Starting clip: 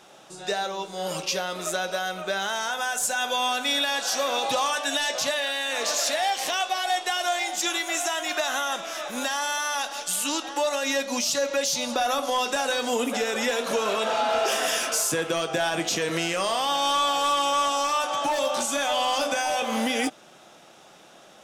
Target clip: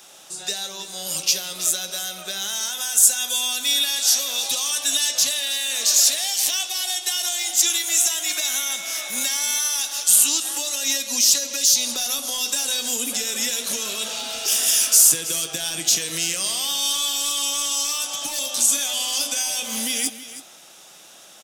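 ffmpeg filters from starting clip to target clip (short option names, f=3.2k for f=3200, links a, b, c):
-filter_complex "[0:a]acrossover=split=320|2800[a][b][c];[b]acompressor=threshold=-37dB:ratio=6[d];[a][d][c]amix=inputs=3:normalize=0,asettb=1/sr,asplit=3[e][f][g];[e]atrim=end=3.644[h];[f]atrim=start=3.64:end=4.7,asetpts=PTS-STARTPTS,afade=t=in:d=0.004:c=qsin,afade=t=out:st=1.056:d=0.004:c=qsin,highpass=f=230:p=1[i];[g]atrim=start=4.696[j];[h][i]acrossfade=d=0.004:c1=hsin:c2=qsin[k];[k][j]acrossfade=d=0.004:c1=qsin:c2=hsin,asplit=2[l][m];[m]adelay=160,highpass=300,lowpass=3.4k,asoftclip=type=hard:threshold=-24dB,volume=-15dB[n];[l][n]amix=inputs=2:normalize=0,asettb=1/sr,asplit=3[o][p][q];[o]atrim=end=8.264[r];[p]atrim=start=8.26:end=9.59,asetpts=PTS-STARTPTS,afade=t=in:d=0.004:c=qsin,afade=t=out:st=1.326:d=0.004:c=qsin,aeval=exprs='val(0)+0.0126*sin(2*PI*2200*n/s)':c=same[s];[q]atrim=start=9.586[t];[r][s]acrossfade=d=0.004:c1=hsin:c2=qsin[u];[u][t]acrossfade=d=0.004:c1=qsin:c2=hsin,crystalizer=i=6:c=0,asplit=2[v][w];[w]aecho=0:1:324:0.188[x];[v][x]amix=inputs=2:normalize=0,volume=-4dB"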